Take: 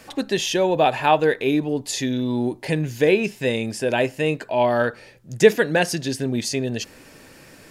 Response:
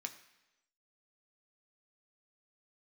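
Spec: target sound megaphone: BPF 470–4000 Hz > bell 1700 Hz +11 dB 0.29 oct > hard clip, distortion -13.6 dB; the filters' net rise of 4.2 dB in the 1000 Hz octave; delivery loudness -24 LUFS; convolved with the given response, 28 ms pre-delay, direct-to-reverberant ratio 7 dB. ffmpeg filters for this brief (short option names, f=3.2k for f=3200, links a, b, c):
-filter_complex "[0:a]equalizer=f=1k:t=o:g=6,asplit=2[a][b];[1:a]atrim=start_sample=2205,adelay=28[c];[b][c]afir=irnorm=-1:irlink=0,volume=-5dB[d];[a][d]amix=inputs=2:normalize=0,highpass=470,lowpass=4k,equalizer=f=1.7k:t=o:w=0.29:g=11,asoftclip=type=hard:threshold=-9.5dB,volume=-3.5dB"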